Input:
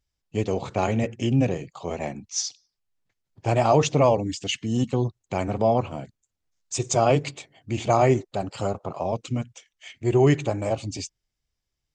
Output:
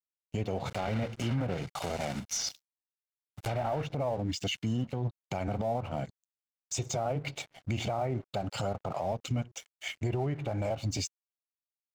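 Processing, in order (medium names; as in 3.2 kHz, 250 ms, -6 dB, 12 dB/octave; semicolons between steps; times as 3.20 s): 0.66–3.87 s: block-companded coder 3-bit; low-pass that closes with the level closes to 1.7 kHz, closed at -16.5 dBFS; comb 1.4 ms, depth 39%; compression 2.5:1, threshold -33 dBFS, peak gain reduction 13.5 dB; peak limiter -28.5 dBFS, peak gain reduction 9.5 dB; crossover distortion -57 dBFS; trim +5.5 dB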